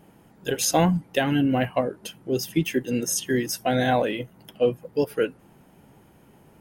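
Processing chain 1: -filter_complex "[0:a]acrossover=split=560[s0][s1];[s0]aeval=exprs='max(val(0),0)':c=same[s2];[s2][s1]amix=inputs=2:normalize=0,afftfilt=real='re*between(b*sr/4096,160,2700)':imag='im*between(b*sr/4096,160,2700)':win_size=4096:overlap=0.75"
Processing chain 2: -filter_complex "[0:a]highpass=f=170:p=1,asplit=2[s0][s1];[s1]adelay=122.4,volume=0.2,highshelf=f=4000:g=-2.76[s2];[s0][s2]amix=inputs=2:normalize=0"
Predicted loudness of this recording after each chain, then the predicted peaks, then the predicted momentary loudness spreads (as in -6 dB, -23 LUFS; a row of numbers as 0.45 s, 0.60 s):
-29.0 LUFS, -25.5 LUFS; -11.5 dBFS, -8.0 dBFS; 10 LU, 9 LU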